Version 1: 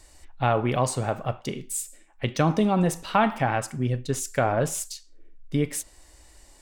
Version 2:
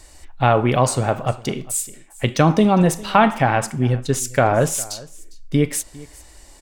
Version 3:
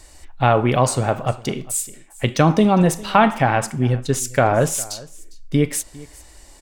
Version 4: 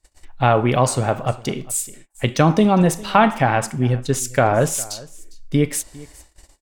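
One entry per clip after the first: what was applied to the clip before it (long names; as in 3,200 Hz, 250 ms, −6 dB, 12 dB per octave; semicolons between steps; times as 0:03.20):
single-tap delay 404 ms −21.5 dB; level +7 dB
no processing that can be heard
noise gate −42 dBFS, range −28 dB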